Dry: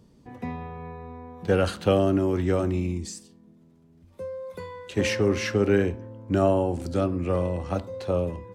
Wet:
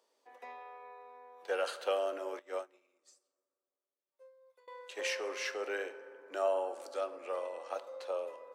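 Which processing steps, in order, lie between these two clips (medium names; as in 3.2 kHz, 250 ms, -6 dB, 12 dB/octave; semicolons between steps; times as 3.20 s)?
inverse Chebyshev high-pass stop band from 150 Hz, stop band 60 dB; reverberation RT60 2.8 s, pre-delay 3 ms, DRR 12.5 dB; 2.39–4.68 s: upward expansion 2.5:1, over -42 dBFS; trim -7.5 dB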